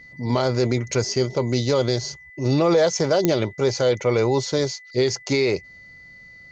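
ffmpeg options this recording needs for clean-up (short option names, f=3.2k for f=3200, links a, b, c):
-af "adeclick=t=4,bandreject=f=2k:w=30"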